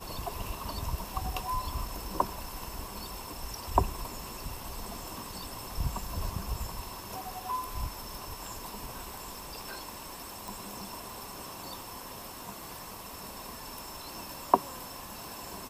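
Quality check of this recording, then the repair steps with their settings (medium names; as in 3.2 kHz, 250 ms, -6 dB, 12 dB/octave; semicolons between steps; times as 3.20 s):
10.48 s: pop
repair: de-click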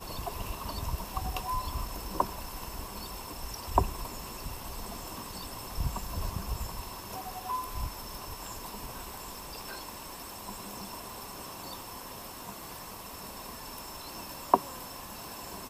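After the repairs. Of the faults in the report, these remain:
nothing left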